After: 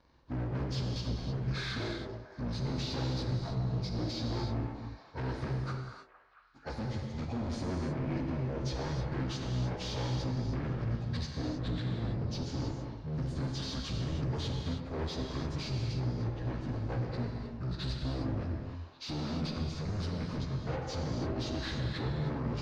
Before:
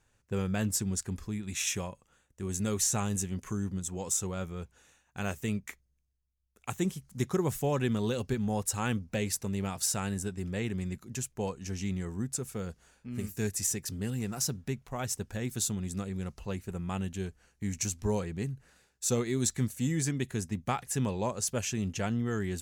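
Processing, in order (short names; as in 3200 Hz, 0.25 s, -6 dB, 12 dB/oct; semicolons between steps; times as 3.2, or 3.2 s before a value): pitch shift by moving bins -8 st; HPF 230 Hz 6 dB/oct; low shelf 340 Hz +11.5 dB; notch 7800 Hz, Q 9.6; in parallel at +1 dB: compressor, threshold -37 dBFS, peak gain reduction 14.5 dB; on the sum: limiter -22 dBFS, peak gain reduction 8 dB; overloaded stage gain 34.5 dB; air absorption 150 m; on a send: delay with a stepping band-pass 0.227 s, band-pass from 510 Hz, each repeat 0.7 oct, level -10.5 dB; on the sum: non-linear reverb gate 0.34 s flat, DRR 1 dB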